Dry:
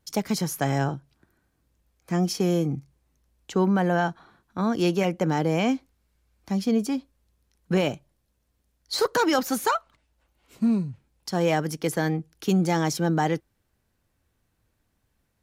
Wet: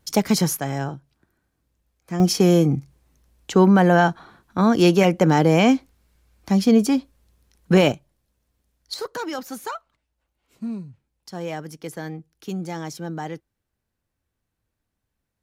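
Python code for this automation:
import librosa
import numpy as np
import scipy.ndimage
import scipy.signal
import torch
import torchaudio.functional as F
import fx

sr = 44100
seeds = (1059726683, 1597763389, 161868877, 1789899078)

y = fx.gain(x, sr, db=fx.steps((0.0, 7.0), (0.57, -2.0), (2.2, 7.5), (7.92, 1.0), (8.94, -7.5)))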